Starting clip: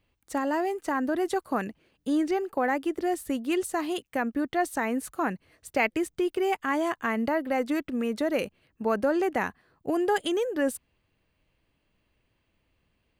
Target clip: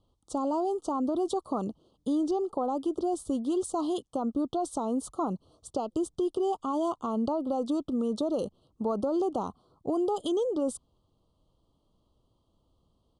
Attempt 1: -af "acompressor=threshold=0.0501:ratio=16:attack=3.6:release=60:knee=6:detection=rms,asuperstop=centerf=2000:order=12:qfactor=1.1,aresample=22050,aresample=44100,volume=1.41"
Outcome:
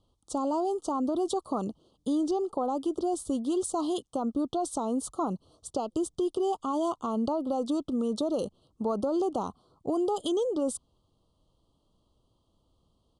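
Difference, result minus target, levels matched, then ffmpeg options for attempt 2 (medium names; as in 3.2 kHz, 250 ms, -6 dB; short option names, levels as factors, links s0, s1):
4 kHz band +2.5 dB
-af "acompressor=threshold=0.0501:ratio=16:attack=3.6:release=60:knee=6:detection=rms,asuperstop=centerf=2000:order=12:qfactor=1.1,highshelf=f=2700:g=-4.5,aresample=22050,aresample=44100,volume=1.41"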